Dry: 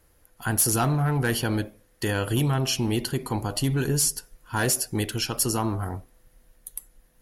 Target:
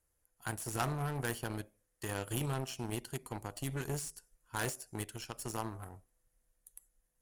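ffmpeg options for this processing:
-filter_complex "[0:a]acrossover=split=3600[s0][s1];[s1]acompressor=threshold=0.02:ratio=4:attack=1:release=60[s2];[s0][s2]amix=inputs=2:normalize=0,equalizer=f=250:t=o:w=1:g=-4,equalizer=f=4000:t=o:w=1:g=-4,equalizer=f=8000:t=o:w=1:g=10,aeval=exprs='0.211*(cos(1*acos(clip(val(0)/0.211,-1,1)))-cos(1*PI/2))+0.0596*(cos(3*acos(clip(val(0)/0.211,-1,1)))-cos(3*PI/2))':c=same,volume=0.668"

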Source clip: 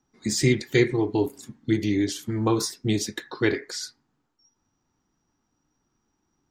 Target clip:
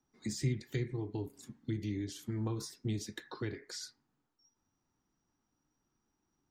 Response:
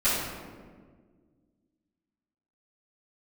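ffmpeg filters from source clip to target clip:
-filter_complex "[0:a]acrossover=split=190[s0][s1];[s1]acompressor=threshold=0.0251:ratio=8[s2];[s0][s2]amix=inputs=2:normalize=0,volume=0.422"

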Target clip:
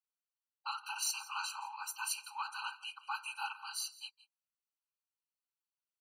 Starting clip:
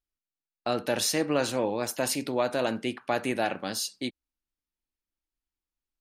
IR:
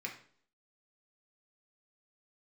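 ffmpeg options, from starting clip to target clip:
-af "aecho=1:1:167:0.112,afftfilt=real='hypot(re,im)*cos(2*PI*random(0))':imag='hypot(re,im)*sin(2*PI*random(1))':win_size=512:overlap=0.75,asubboost=boost=10:cutoff=150,afftfilt=real='re*eq(mod(floor(b*sr/1024/790),2),1)':imag='im*eq(mod(floor(b*sr/1024/790),2),1)':win_size=1024:overlap=0.75,volume=1.26"

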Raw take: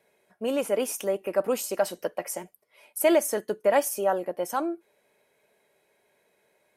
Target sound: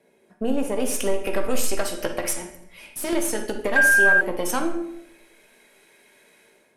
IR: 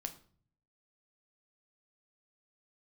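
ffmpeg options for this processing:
-filter_complex "[0:a]acrossover=split=1200[s0][s1];[s1]dynaudnorm=f=640:g=3:m=5.01[s2];[s0][s2]amix=inputs=2:normalize=0,asettb=1/sr,asplit=3[s3][s4][s5];[s3]atrim=end=2.334[s6];[s4]atrim=start=2.33:end=3.13,asetpts=PTS-STARTPTS,afade=t=in:d=0.004:c=qsin,afade=t=out:st=0.796:d=0.004:c=qsin,aeval=exprs='(tanh(28.2*val(0)+0.45)-tanh(0.45))/28.2':c=same[s7];[s5]atrim=start=3.126[s8];[s6][s7]acrossfade=d=0.004:c1=hsin:c2=qsin[s9];[s9][s8]acrossfade=d=0.004:c1=qsin:c2=hsin,equalizer=f=260:t=o:w=1.4:g=12.5,acompressor=threshold=0.0631:ratio=12,aeval=exprs='0.237*(cos(1*acos(clip(val(0)/0.237,-1,1)))-cos(1*PI/2))+0.0211*(cos(6*acos(clip(val(0)/0.237,-1,1)))-cos(6*PI/2))':c=same,asettb=1/sr,asplit=3[s10][s11][s12];[s10]atrim=end=0.804[s13];[s11]atrim=start=0.8:end=1.76,asetpts=PTS-STARTPTS,afade=t=in:d=0.004:c=qsin,afade=t=out:st=0.956:d=0.004:c=qsin,asubboost=boost=8:cutoff=78[s14];[s12]atrim=start=1.756[s15];[s13][s14]acrossfade=d=0.004:c1=hsin:c2=qsin[s16];[s16][s15]acrossfade=d=0.004:c1=qsin:c2=hsin[s17];[1:a]atrim=start_sample=2205,asetrate=22491,aresample=44100[s18];[s17][s18]afir=irnorm=-1:irlink=0,asettb=1/sr,asplit=3[s19][s20][s21];[s19]atrim=end=3.764[s22];[s20]atrim=start=3.76:end=4.21,asetpts=PTS-STARTPTS,afade=t=in:d=0.004:c=qsin,afade=t=out:st=0.446:d=0.004:c=qsin,aeval=exprs='val(0)+0.224*sin(2*PI*1600*n/s)':c=same[s23];[s21]atrim=start=4.206[s24];[s22][s23]acrossfade=d=0.004:c1=hsin:c2=qsin[s25];[s25][s24]acrossfade=d=0.004:c1=qsin:c2=hsin"

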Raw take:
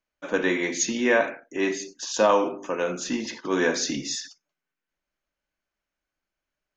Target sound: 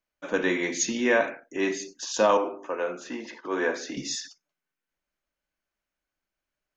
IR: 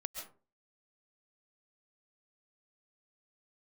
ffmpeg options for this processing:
-filter_complex "[0:a]asettb=1/sr,asplit=3[s0][s1][s2];[s0]atrim=end=2.374[s3];[s1]atrim=start=2.37:end=3.97,asetpts=PTS-STARTPTS,afade=t=in:d=0.004:c=qsin,afade=t=out:st=1.596:d=0.004:c=qsin,acrossover=split=310 2400:gain=0.2 1 0.251[s4][s5][s6];[s4][s5][s6]amix=inputs=3:normalize=0[s7];[s2]atrim=start=3.966[s8];[s3][s7]acrossfade=d=0.004:c1=hsin:c2=qsin[s9];[s9][s8]acrossfade=d=0.004:c1=qsin:c2=hsin,volume=0.841"

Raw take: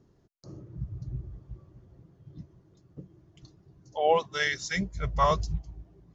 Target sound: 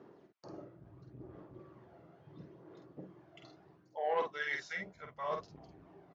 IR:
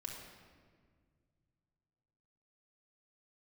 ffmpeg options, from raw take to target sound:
-filter_complex "[0:a]areverse,acompressor=threshold=0.01:ratio=20,areverse,aphaser=in_gain=1:out_gain=1:delay=1.5:decay=0.45:speed=0.73:type=sinusoidal,asoftclip=type=tanh:threshold=0.02,highpass=400,lowpass=2400,asplit=2[s0][s1];[s1]adelay=48,volume=0.562[s2];[s0][s2]amix=inputs=2:normalize=0,volume=2.51"

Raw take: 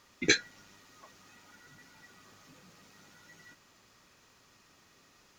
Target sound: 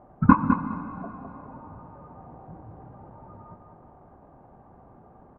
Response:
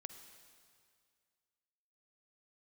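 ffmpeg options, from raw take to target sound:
-filter_complex "[0:a]lowpass=f=1500:w=0.5412,lowpass=f=1500:w=1.3066,asetrate=27781,aresample=44100,atempo=1.5874,aecho=1:1:207|414|621:0.422|0.0928|0.0204,asplit=2[s0][s1];[1:a]atrim=start_sample=2205,asetrate=27342,aresample=44100[s2];[s1][s2]afir=irnorm=-1:irlink=0,volume=2[s3];[s0][s3]amix=inputs=2:normalize=0,volume=2.24"

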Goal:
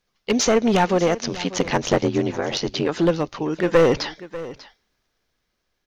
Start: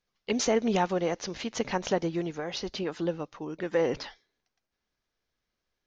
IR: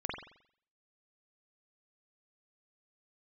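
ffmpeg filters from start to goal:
-filter_complex "[0:a]dynaudnorm=f=330:g=7:m=1.58,asplit=3[s0][s1][s2];[s0]afade=t=out:st=1.2:d=0.02[s3];[s1]aeval=exprs='val(0)*sin(2*PI*46*n/s)':c=same,afade=t=in:st=1.2:d=0.02,afade=t=out:st=2.87:d=0.02[s4];[s2]afade=t=in:st=2.87:d=0.02[s5];[s3][s4][s5]amix=inputs=3:normalize=0,aeval=exprs='clip(val(0),-1,0.075)':c=same,asplit=2[s6][s7];[s7]aecho=0:1:593:0.15[s8];[s6][s8]amix=inputs=2:normalize=0,volume=2.66"

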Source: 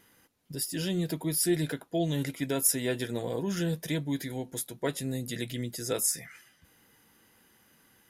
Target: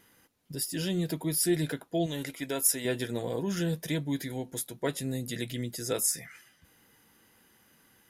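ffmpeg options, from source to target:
-filter_complex "[0:a]asettb=1/sr,asplit=3[s0][s1][s2];[s0]atrim=end=2.064[s3];[s1]atrim=start=2.06:end=2.85,asetpts=PTS-STARTPTS,afade=t=in:d=0.004:c=qsin,afade=t=out:st=0.786:d=0.004:c=qsin,equalizer=f=140:t=o:w=2.1:g=-8.5[s4];[s2]atrim=start=2.846[s5];[s3][s4]acrossfade=d=0.004:c1=hsin:c2=qsin[s6];[s6][s5]acrossfade=d=0.004:c1=qsin:c2=hsin"

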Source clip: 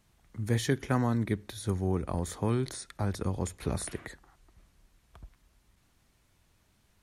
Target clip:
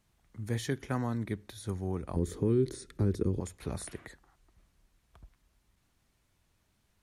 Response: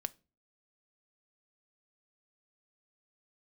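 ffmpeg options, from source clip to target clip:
-filter_complex "[0:a]asettb=1/sr,asplit=3[s0][s1][s2];[s0]atrim=end=2.164[s3];[s1]atrim=start=2.16:end=3.4,asetpts=PTS-STARTPTS,afade=t=in:d=0.004:c=qsin,afade=t=out:st=1.236:d=0.004:c=qsin,lowshelf=f=530:t=q:w=3:g=9.5[s4];[s2]atrim=start=3.396[s5];[s3][s4]acrossfade=d=0.004:c1=hsin:c2=qsin[s6];[s6][s5]acrossfade=d=0.004:c1=qsin:c2=hsin,alimiter=limit=0.211:level=0:latency=1:release=221,volume=0.562"

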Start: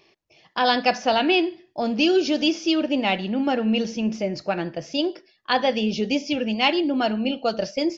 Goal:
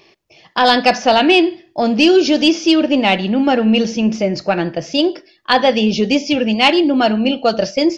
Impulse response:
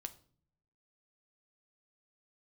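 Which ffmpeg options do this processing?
-filter_complex "[0:a]acontrast=66,asplit=2[s0][s1];[1:a]atrim=start_sample=2205,afade=t=out:st=0.34:d=0.01,atrim=end_sample=15435[s2];[s1][s2]afir=irnorm=-1:irlink=0,volume=0.282[s3];[s0][s3]amix=inputs=2:normalize=0,volume=1.12"

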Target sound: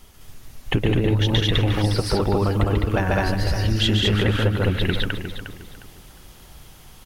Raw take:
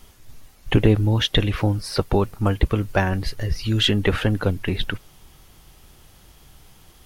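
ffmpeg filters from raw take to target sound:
-filter_complex "[0:a]asplit=2[s0][s1];[s1]aecho=0:1:139.9|207:0.794|1[s2];[s0][s2]amix=inputs=2:normalize=0,acompressor=threshold=0.158:ratio=6,asplit=2[s3][s4];[s4]adelay=357,lowpass=f=4000:p=1,volume=0.355,asplit=2[s5][s6];[s6]adelay=357,lowpass=f=4000:p=1,volume=0.3,asplit=2[s7][s8];[s8]adelay=357,lowpass=f=4000:p=1,volume=0.3[s9];[s5][s7][s9]amix=inputs=3:normalize=0[s10];[s3][s10]amix=inputs=2:normalize=0"

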